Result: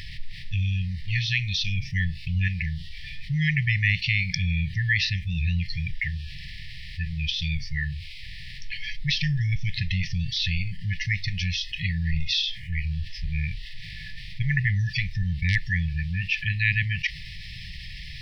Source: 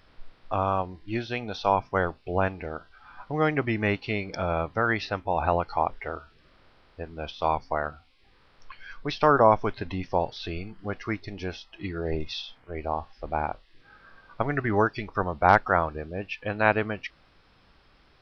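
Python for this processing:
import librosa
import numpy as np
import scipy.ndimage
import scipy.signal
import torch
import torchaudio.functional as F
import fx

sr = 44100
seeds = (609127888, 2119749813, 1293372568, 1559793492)

y = fx.brickwall_bandstop(x, sr, low_hz=180.0, high_hz=1700.0)
y = fx.env_flatten(y, sr, amount_pct=50)
y = y * librosa.db_to_amplitude(6.0)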